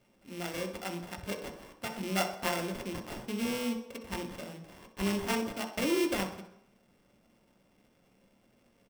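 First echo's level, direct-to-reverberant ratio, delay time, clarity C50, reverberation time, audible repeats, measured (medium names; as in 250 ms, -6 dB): -12.0 dB, 3.5 dB, 63 ms, 8.0 dB, 0.75 s, 2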